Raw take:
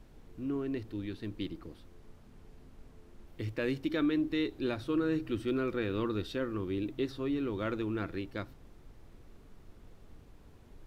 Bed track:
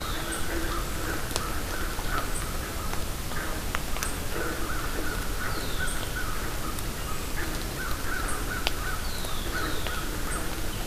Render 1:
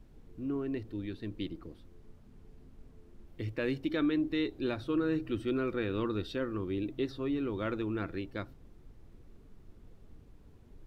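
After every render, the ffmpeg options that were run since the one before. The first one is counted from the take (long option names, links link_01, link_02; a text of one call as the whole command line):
ffmpeg -i in.wav -af "afftdn=noise_reduction=6:noise_floor=-56" out.wav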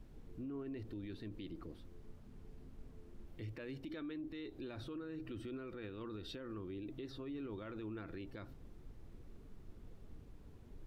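ffmpeg -i in.wav -af "acompressor=threshold=-37dB:ratio=6,alimiter=level_in=14.5dB:limit=-24dB:level=0:latency=1:release=28,volume=-14.5dB" out.wav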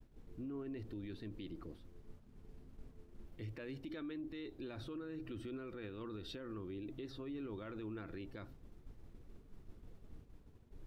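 ffmpeg -i in.wav -af "agate=range=-33dB:threshold=-49dB:ratio=3:detection=peak" out.wav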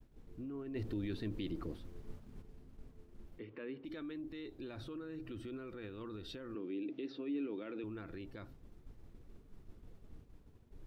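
ffmpeg -i in.wav -filter_complex "[0:a]asplit=3[link_01][link_02][link_03];[link_01]afade=type=out:start_time=0.74:duration=0.02[link_04];[link_02]acontrast=85,afade=type=in:start_time=0.74:duration=0.02,afade=type=out:start_time=2.41:duration=0.02[link_05];[link_03]afade=type=in:start_time=2.41:duration=0.02[link_06];[link_04][link_05][link_06]amix=inputs=3:normalize=0,asplit=3[link_07][link_08][link_09];[link_07]afade=type=out:start_time=3.38:duration=0.02[link_10];[link_08]highpass=220,equalizer=frequency=240:width_type=q:width=4:gain=5,equalizer=frequency=430:width_type=q:width=4:gain=7,equalizer=frequency=680:width_type=q:width=4:gain=-6,equalizer=frequency=1100:width_type=q:width=4:gain=4,lowpass=frequency=3200:width=0.5412,lowpass=frequency=3200:width=1.3066,afade=type=in:start_time=3.38:duration=0.02,afade=type=out:start_time=3.84:duration=0.02[link_11];[link_09]afade=type=in:start_time=3.84:duration=0.02[link_12];[link_10][link_11][link_12]amix=inputs=3:normalize=0,asettb=1/sr,asplit=3[link_13][link_14][link_15];[link_13]atrim=end=6.554[link_16];[link_14]atrim=start=6.55:end=7.84,asetpts=PTS-STARTPTS,afade=type=in:duration=0.004:curve=qsin,afade=type=out:start_time=1.286:duration=0.004:curve=qsin,highpass=frequency=180:width=0.5412,highpass=frequency=180:width=1.3066,equalizer=frequency=290:width_type=q:width=4:gain=7,equalizer=frequency=460:width_type=q:width=4:gain=6,equalizer=frequency=1100:width_type=q:width=4:gain=-5,equalizer=frequency=2500:width_type=q:width=4:gain=7,lowpass=frequency=5400:width=0.5412,lowpass=frequency=5400:width=1.3066[link_17];[link_15]atrim=start=7.836[link_18];[link_16][link_17]acrossfade=duration=0.004:curve1=hsin:curve2=qsin[link_19];[link_19][link_18]acrossfade=duration=0.004:curve1=qsin:curve2=hsin" out.wav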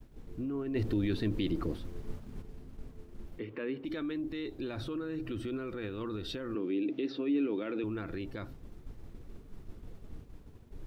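ffmpeg -i in.wav -af "volume=8.5dB" out.wav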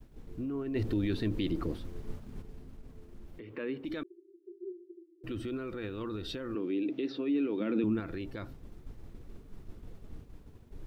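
ffmpeg -i in.wav -filter_complex "[0:a]asettb=1/sr,asplit=3[link_01][link_02][link_03];[link_01]atrim=end=2.764[link_04];[link_02]atrim=start=2.76:end=3.5,asetpts=PTS-STARTPTS,afade=type=in:duration=0.004:curve=qsin,afade=type=out:start_time=0.736:duration=0.004:curve=qsin,acompressor=threshold=-42dB:ratio=6:attack=3.2:release=140:knee=1:detection=peak[link_05];[link_03]atrim=start=3.496[link_06];[link_04][link_05]acrossfade=duration=0.004:curve1=hsin:curve2=qsin[link_07];[link_07][link_06]acrossfade=duration=0.004:curve1=qsin:curve2=hsin,asettb=1/sr,asplit=3[link_08][link_09][link_10];[link_08]atrim=end=4.034[link_11];[link_09]atrim=start=4.03:end=5.24,asetpts=PTS-STARTPTS,afade=type=in:duration=0.004:curve=qsin,afade=type=out:start_time=1.206:duration=0.004:curve=qsin,asuperpass=centerf=370:order=12:qfactor=5.9[link_12];[link_10]atrim=start=5.236[link_13];[link_11][link_12]acrossfade=duration=0.004:curve1=hsin:curve2=qsin[link_14];[link_14][link_13]acrossfade=duration=0.004:curve1=qsin:curve2=hsin,asettb=1/sr,asplit=3[link_15][link_16][link_17];[link_15]atrim=end=7.604[link_18];[link_16]atrim=start=7.6:end=8,asetpts=PTS-STARTPTS,afade=type=in:duration=0.004:curve=qsin,afade=type=out:start_time=0.396:duration=0.004:curve=qsin,equalizer=frequency=210:width=1.5:gain=12[link_19];[link_17]atrim=start=7.996[link_20];[link_18][link_19]acrossfade=duration=0.004:curve1=hsin:curve2=qsin[link_21];[link_21][link_20]acrossfade=duration=0.004:curve1=qsin:curve2=hsin" out.wav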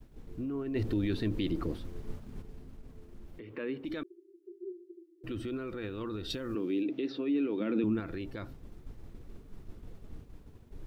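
ffmpeg -i in.wav -filter_complex "[0:a]asettb=1/sr,asplit=3[link_01][link_02][link_03];[link_01]atrim=end=6.304[link_04];[link_02]atrim=start=6.3:end=6.83,asetpts=PTS-STARTPTS,afade=type=in:duration=0.004:curve=qsin,afade=type=out:start_time=0.526:duration=0.004:curve=qsin,bass=frequency=250:gain=3,treble=frequency=4000:gain=9[link_05];[link_03]atrim=start=6.826[link_06];[link_04][link_05]acrossfade=duration=0.004:curve1=hsin:curve2=qsin[link_07];[link_07][link_06]acrossfade=duration=0.004:curve1=qsin:curve2=hsin" out.wav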